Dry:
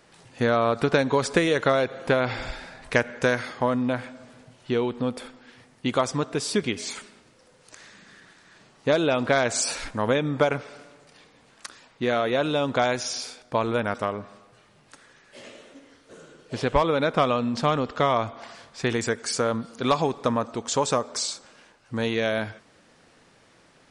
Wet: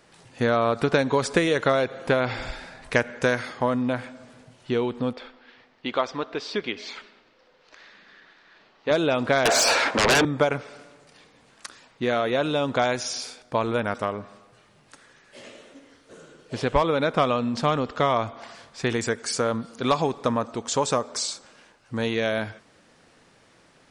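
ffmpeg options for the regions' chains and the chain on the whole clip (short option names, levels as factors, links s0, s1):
-filter_complex "[0:a]asettb=1/sr,asplit=3[s0][s1][s2];[s0]atrim=end=5.134[s3];[s1]atrim=start=5.13:end=8.91,asetpts=PTS-STARTPTS,afade=t=in:d=0.004:c=qsin,afade=t=out:st=3.776:d=0.004:c=qsin,lowpass=f=4500:w=0.5412,lowpass=f=4500:w=1.3066,equalizer=f=120:t=o:w=1.8:g=-14.5[s4];[s2]atrim=start=8.906[s5];[s3][s4]acrossfade=d=0.004:c1=hsin:c2=qsin[s6];[s6][s5]acrossfade=d=0.004:c1=qsin:c2=hsin,asettb=1/sr,asplit=3[s7][s8][s9];[s7]atrim=end=9.454[s10];[s8]atrim=start=9.45:end=10.25,asetpts=PTS-STARTPTS,afade=t=in:d=0.004:c=qsin,afade=t=out:st=0.796:d=0.004:c=qsin,highpass=500,lowpass=3100,equalizer=f=2300:t=o:w=2.3:g=-5.5,aeval=exprs='0.188*sin(PI/2*7.08*val(0)/0.188)':c=same[s11];[s9]atrim=start=10.246[s12];[s10][s11]acrossfade=d=0.004:c1=hsin:c2=qsin[s13];[s13][s12]acrossfade=d=0.004:c1=qsin:c2=hsin"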